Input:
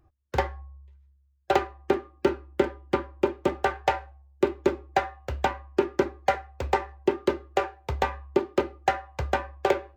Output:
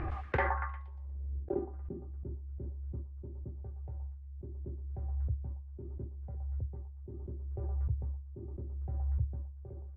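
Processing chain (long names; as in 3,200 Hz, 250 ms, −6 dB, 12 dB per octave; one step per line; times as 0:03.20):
echo through a band-pass that steps 118 ms, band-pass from 980 Hz, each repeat 0.7 octaves, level −12 dB
reversed playback
downward compressor 10 to 1, threshold −35 dBFS, peak gain reduction 20 dB
reversed playback
low-pass filter sweep 2,100 Hz → 110 Hz, 0:00.35–0:02.18
background raised ahead of every attack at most 22 dB per second
level +4.5 dB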